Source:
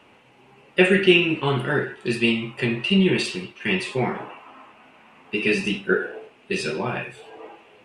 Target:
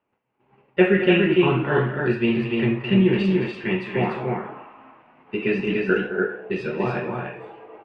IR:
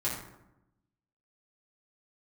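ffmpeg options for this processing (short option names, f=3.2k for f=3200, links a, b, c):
-filter_complex "[0:a]lowpass=1.8k,agate=range=-23dB:threshold=-51dB:ratio=16:detection=peak,aecho=1:1:215.7|291.5:0.282|0.708,asplit=2[a][b];[1:a]atrim=start_sample=2205,afade=t=out:st=0.34:d=0.01,atrim=end_sample=15435[c];[b][c]afir=irnorm=-1:irlink=0,volume=-24dB[d];[a][d]amix=inputs=2:normalize=0"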